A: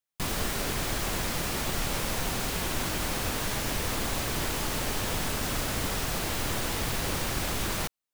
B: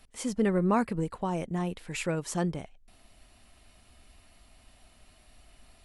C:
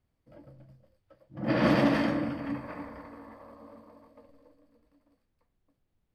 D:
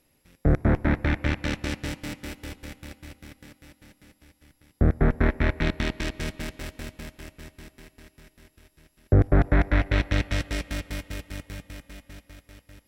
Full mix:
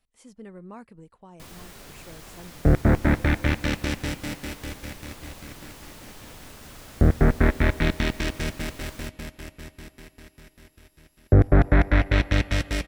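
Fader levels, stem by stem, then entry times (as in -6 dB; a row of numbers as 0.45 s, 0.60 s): -14.5 dB, -17.0 dB, mute, +2.5 dB; 1.20 s, 0.00 s, mute, 2.20 s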